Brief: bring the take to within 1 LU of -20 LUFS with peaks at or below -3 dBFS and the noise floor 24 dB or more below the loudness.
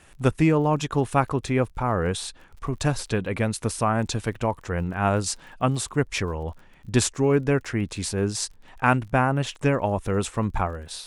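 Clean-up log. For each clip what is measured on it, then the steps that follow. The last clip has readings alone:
ticks 37/s; loudness -25.0 LUFS; peak -5.5 dBFS; loudness target -20.0 LUFS
-> de-click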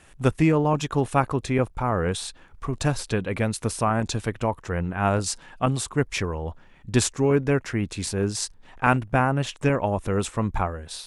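ticks 0/s; loudness -25.0 LUFS; peak -5.5 dBFS; loudness target -20.0 LUFS
-> gain +5 dB; limiter -3 dBFS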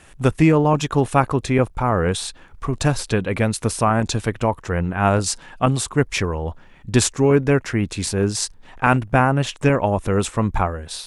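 loudness -20.0 LUFS; peak -3.0 dBFS; noise floor -47 dBFS

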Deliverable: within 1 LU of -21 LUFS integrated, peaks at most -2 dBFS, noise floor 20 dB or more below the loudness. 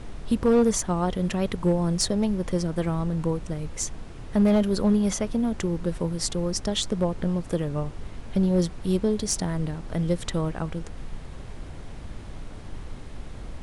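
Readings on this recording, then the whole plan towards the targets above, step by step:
clipped 0.5%; flat tops at -14.0 dBFS; noise floor -40 dBFS; noise floor target -46 dBFS; loudness -26.0 LUFS; peak -14.0 dBFS; loudness target -21.0 LUFS
-> clip repair -14 dBFS; noise print and reduce 6 dB; gain +5 dB

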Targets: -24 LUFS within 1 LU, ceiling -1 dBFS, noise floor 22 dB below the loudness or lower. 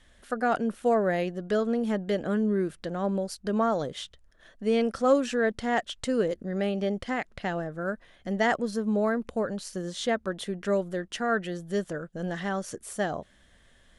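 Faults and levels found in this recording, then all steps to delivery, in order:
loudness -29.0 LUFS; peak -10.0 dBFS; loudness target -24.0 LUFS
-> gain +5 dB

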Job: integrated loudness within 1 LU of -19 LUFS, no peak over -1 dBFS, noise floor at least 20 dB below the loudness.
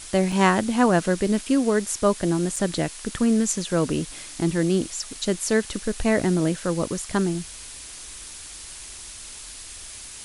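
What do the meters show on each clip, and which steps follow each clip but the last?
dropouts 2; longest dropout 4.0 ms; noise floor -40 dBFS; noise floor target -44 dBFS; loudness -23.5 LUFS; peak -4.5 dBFS; loudness target -19.0 LUFS
-> interpolate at 0.32/2.56, 4 ms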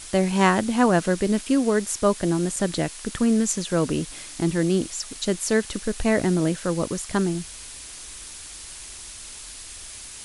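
dropouts 0; noise floor -40 dBFS; noise floor target -44 dBFS
-> denoiser 6 dB, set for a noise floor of -40 dBFS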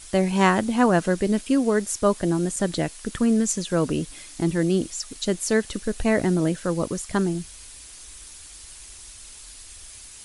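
noise floor -44 dBFS; loudness -23.5 LUFS; peak -4.5 dBFS; loudness target -19.0 LUFS
-> gain +4.5 dB; limiter -1 dBFS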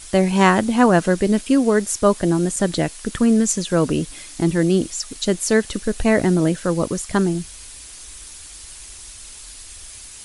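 loudness -19.0 LUFS; peak -1.0 dBFS; noise floor -39 dBFS

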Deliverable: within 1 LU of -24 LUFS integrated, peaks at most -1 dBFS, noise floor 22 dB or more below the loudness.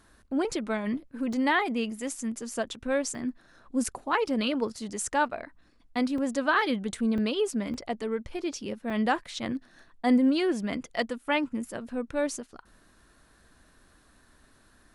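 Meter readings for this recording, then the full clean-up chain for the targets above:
dropouts 7; longest dropout 2.6 ms; loudness -29.5 LUFS; peak -12.5 dBFS; loudness target -24.0 LUFS
-> interpolate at 1.33/3.15/4.28/6.18/7.18/7.74/8.9, 2.6 ms; gain +5.5 dB

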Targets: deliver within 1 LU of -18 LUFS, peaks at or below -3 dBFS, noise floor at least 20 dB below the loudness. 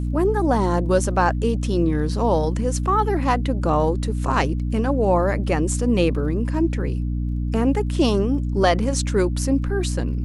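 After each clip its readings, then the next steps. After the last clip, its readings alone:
ticks 23/s; hum 60 Hz; harmonics up to 300 Hz; hum level -21 dBFS; loudness -21.0 LUFS; peak -5.0 dBFS; loudness target -18.0 LUFS
-> de-click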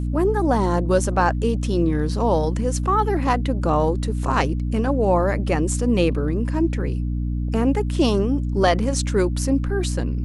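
ticks 0/s; hum 60 Hz; harmonics up to 300 Hz; hum level -21 dBFS
-> de-hum 60 Hz, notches 5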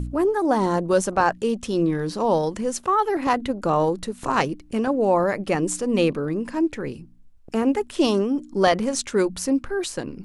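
hum none; loudness -23.0 LUFS; peak -5.0 dBFS; loudness target -18.0 LUFS
-> gain +5 dB; limiter -3 dBFS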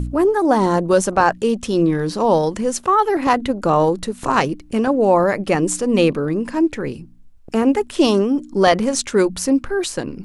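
loudness -18.0 LUFS; peak -3.0 dBFS; noise floor -42 dBFS

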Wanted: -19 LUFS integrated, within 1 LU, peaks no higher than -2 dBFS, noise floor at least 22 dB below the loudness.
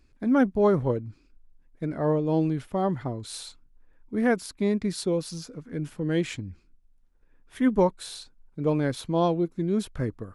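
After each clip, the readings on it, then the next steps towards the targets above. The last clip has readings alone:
dropouts 1; longest dropout 1.6 ms; loudness -26.5 LUFS; peak -10.5 dBFS; loudness target -19.0 LUFS
-> interpolate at 8.98, 1.6 ms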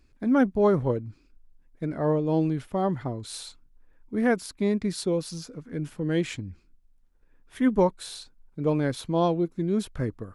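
dropouts 0; loudness -26.5 LUFS; peak -10.5 dBFS; loudness target -19.0 LUFS
-> gain +7.5 dB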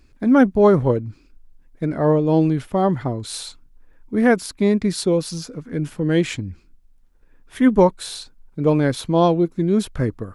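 loudness -19.0 LUFS; peak -3.0 dBFS; noise floor -53 dBFS

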